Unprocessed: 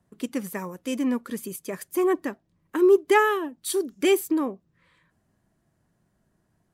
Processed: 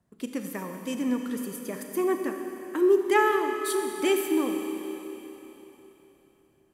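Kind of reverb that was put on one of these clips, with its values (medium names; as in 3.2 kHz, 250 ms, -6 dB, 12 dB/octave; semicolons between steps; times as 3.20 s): Schroeder reverb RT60 3.6 s, combs from 28 ms, DRR 4 dB; trim -3.5 dB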